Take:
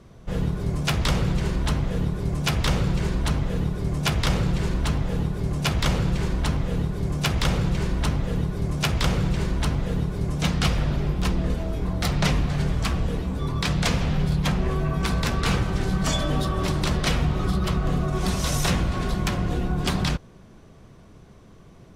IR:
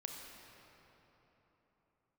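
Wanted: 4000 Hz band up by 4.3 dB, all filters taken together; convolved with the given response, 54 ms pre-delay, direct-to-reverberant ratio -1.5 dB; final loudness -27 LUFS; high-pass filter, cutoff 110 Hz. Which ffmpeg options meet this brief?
-filter_complex "[0:a]highpass=110,equalizer=f=4k:t=o:g=5.5,asplit=2[a][b];[1:a]atrim=start_sample=2205,adelay=54[c];[b][c]afir=irnorm=-1:irlink=0,volume=3.5dB[d];[a][d]amix=inputs=2:normalize=0,volume=-5.5dB"

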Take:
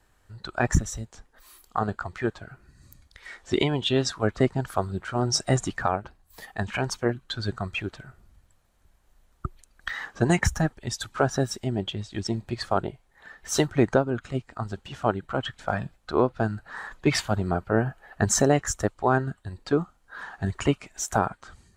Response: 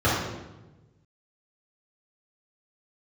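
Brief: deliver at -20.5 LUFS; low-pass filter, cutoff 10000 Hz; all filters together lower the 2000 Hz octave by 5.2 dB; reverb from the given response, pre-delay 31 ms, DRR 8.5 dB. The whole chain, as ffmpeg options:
-filter_complex "[0:a]lowpass=10k,equalizer=f=2k:t=o:g=-7,asplit=2[a][b];[1:a]atrim=start_sample=2205,adelay=31[c];[b][c]afir=irnorm=-1:irlink=0,volume=-27dB[d];[a][d]amix=inputs=2:normalize=0,volume=5.5dB"

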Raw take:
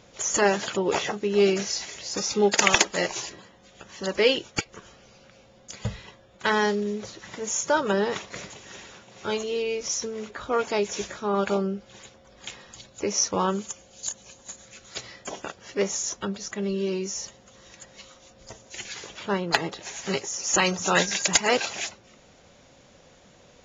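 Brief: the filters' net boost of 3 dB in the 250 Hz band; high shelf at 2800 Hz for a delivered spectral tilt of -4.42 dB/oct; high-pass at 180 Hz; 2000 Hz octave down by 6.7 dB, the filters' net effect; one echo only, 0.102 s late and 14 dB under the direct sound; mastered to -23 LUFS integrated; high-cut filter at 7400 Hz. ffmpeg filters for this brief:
-af "highpass=180,lowpass=7.4k,equalizer=f=250:t=o:g=7,equalizer=f=2k:t=o:g=-6,highshelf=f=2.8k:g=-6.5,aecho=1:1:102:0.2,volume=3.5dB"

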